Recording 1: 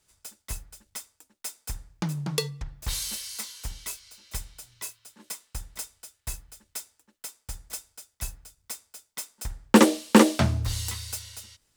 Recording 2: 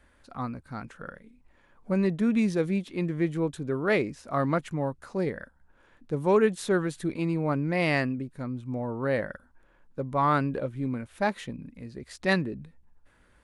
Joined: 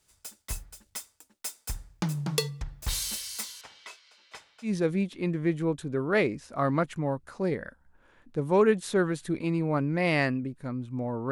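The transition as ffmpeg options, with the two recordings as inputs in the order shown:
-filter_complex "[0:a]asettb=1/sr,asplit=3[a][b][c];[a]atrim=end=3.614[d];[b]atrim=start=3.61:end=4.74,asetpts=PTS-STARTPTS,afade=t=in:d=0.004:c=qsin,afade=t=out:st=1.126:d=0.004:c=qsin,highpass=500,lowpass=3.1k[e];[c]atrim=start=4.736[f];[d][e]acrossfade=d=0.004:c1=hsin:c2=qsin[g];[g][f]acrossfade=d=0.004:c1=qsin:c2=hsin,apad=whole_dur=11.31,atrim=end=11.31,atrim=end=4.74,asetpts=PTS-STARTPTS[h];[1:a]atrim=start=2.37:end=9.06,asetpts=PTS-STARTPTS[i];[h][i]acrossfade=d=0.12:c1=tri:c2=tri"

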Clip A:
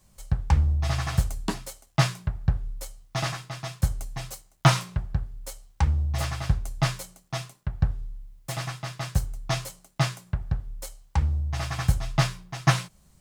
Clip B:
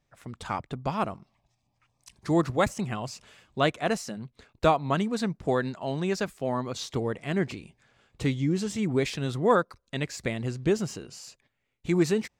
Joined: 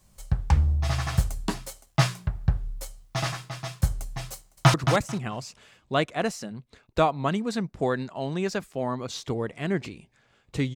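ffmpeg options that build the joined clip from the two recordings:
-filter_complex "[0:a]apad=whole_dur=10.75,atrim=end=10.75,atrim=end=4.742[a];[1:a]atrim=start=2.398:end=8.41[b];[a][b]acrossfade=d=0.004:c1=hsin:c2=hsin,asplit=2[c][d];[d]afade=t=in:st=4.35:d=0.01,afade=t=out:st=4.74:d=0.01,aecho=0:1:220|440|660:0.446684|0.0893367|0.0178673[e];[c][e]amix=inputs=2:normalize=0"

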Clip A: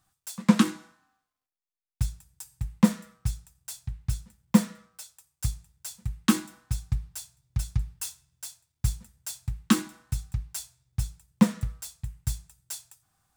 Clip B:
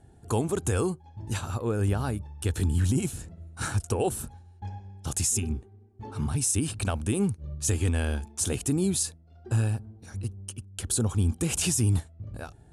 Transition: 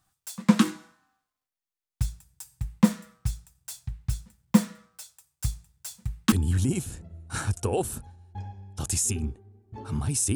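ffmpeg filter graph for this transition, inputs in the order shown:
-filter_complex "[0:a]apad=whole_dur=10.35,atrim=end=10.35,atrim=end=6.322[a];[1:a]atrim=start=2.588:end=6.62[b];[a][b]acrossfade=d=0.004:c1=hsin:c2=hsin"

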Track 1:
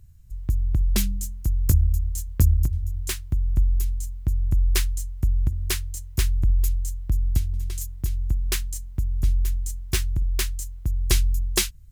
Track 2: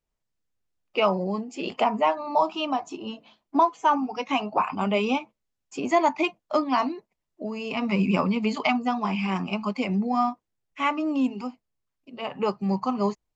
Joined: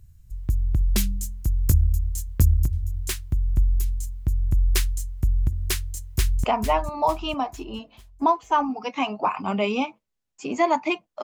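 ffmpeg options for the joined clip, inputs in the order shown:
-filter_complex "[0:a]apad=whole_dur=11.23,atrim=end=11.23,atrim=end=6.442[a];[1:a]atrim=start=1.768:end=6.56[b];[a][b]acrossfade=d=0.004:c1=hsin:c2=hsin,asplit=2[c][d];[d]afade=t=in:st=5.92:d=0.01,afade=t=out:st=6.44:d=0.01,aecho=0:1:450|900|1350|1800|2250:0.398107|0.179148|0.0806167|0.0362775|0.0163249[e];[c][e]amix=inputs=2:normalize=0"

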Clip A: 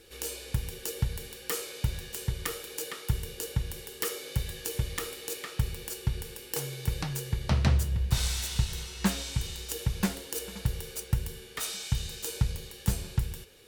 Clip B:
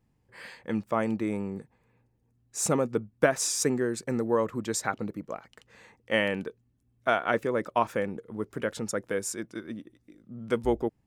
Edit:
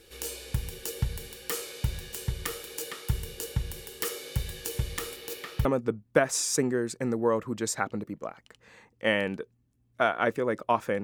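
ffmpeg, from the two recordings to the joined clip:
-filter_complex "[0:a]asettb=1/sr,asplit=3[a][b][c];[a]atrim=end=5.164[d];[b]atrim=start=5.16:end=5.65,asetpts=PTS-STARTPTS,afade=t=in:d=0.004:c=qsin,afade=t=out:st=0.486:d=0.004:c=qsin,equalizer=f=8.2k:t=o:w=0.93:g=-7[e];[c]atrim=start=5.646[f];[d][e]acrossfade=d=0.004:c1=hsin:c2=qsin[g];[g][f]acrossfade=d=0.004:c1=qsin:c2=hsin,apad=whole_dur=11.03,atrim=end=11.03,atrim=end=5.652[h];[1:a]atrim=start=2.718:end=8.1[i];[h][i]acrossfade=d=0.004:c1=hsin:c2=hsin"

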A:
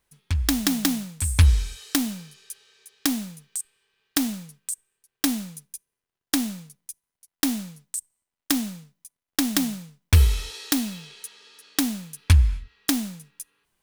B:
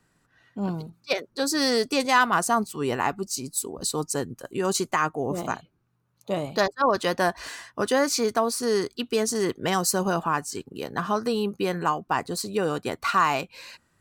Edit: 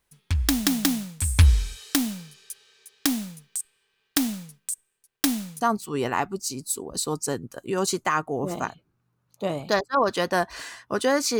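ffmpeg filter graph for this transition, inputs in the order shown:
-filter_complex "[0:a]apad=whole_dur=11.39,atrim=end=11.39,atrim=end=5.612[a];[1:a]atrim=start=2.478:end=8.26[b];[a][b]acrossfade=d=0.004:c1=hsin:c2=hsin"

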